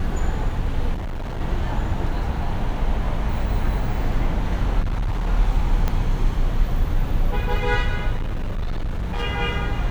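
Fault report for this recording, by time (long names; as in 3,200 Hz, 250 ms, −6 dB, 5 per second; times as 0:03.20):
0:00.93–0:01.41: clipping −24.5 dBFS
0:04.80–0:05.27: clipping −19.5 dBFS
0:05.88: click −10 dBFS
0:08.17–0:09.24: clipping −21 dBFS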